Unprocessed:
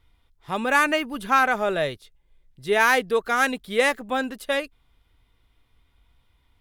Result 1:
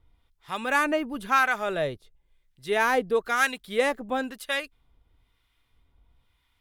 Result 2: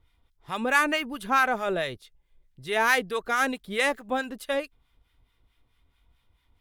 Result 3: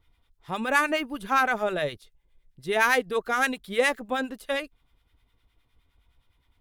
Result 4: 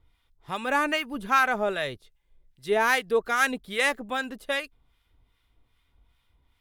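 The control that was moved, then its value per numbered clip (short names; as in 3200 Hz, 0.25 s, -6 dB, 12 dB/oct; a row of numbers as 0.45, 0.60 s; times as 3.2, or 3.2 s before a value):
harmonic tremolo, rate: 1, 4.6, 9.7, 2.5 Hz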